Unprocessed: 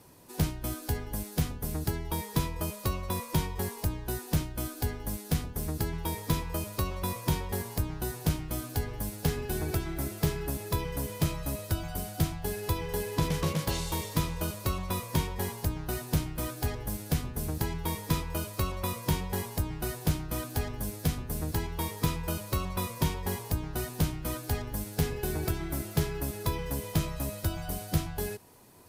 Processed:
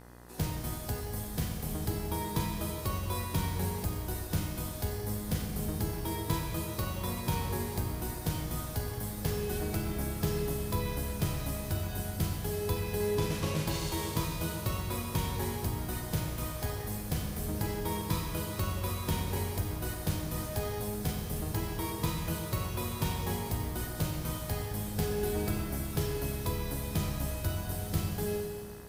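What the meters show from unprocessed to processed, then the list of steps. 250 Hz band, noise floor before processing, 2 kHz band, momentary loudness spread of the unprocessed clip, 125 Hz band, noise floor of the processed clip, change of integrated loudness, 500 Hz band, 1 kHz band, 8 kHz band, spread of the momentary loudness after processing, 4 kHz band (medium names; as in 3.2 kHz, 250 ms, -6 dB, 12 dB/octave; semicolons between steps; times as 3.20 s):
-1.5 dB, -44 dBFS, -1.5 dB, 4 LU, -1.5 dB, -39 dBFS, -1.5 dB, 0.0 dB, -1.5 dB, -1.5 dB, 3 LU, -1.5 dB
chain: Schroeder reverb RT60 2.4 s, combs from 30 ms, DRR 0.5 dB; flange 0.13 Hz, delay 8.3 ms, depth 2.2 ms, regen +67%; mains buzz 60 Hz, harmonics 34, -53 dBFS -4 dB/octave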